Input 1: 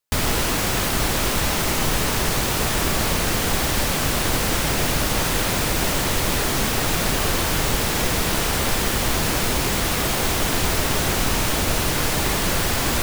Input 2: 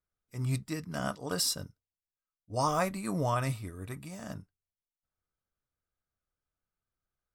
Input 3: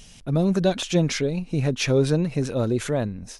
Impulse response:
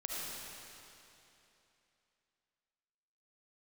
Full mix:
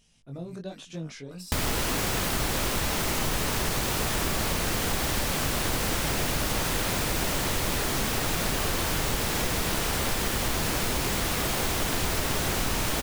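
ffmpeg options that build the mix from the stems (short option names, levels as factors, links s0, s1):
-filter_complex "[0:a]adelay=1400,volume=1.19[s0];[1:a]volume=0.355[s1];[2:a]flanger=delay=18:depth=5.1:speed=1.1,volume=0.211,asplit=2[s2][s3];[s3]apad=whole_len=323729[s4];[s1][s4]sidechaincompress=threshold=0.00708:ratio=8:attack=9.8:release=593[s5];[s0][s5][s2]amix=inputs=3:normalize=0,acompressor=threshold=0.0316:ratio=2"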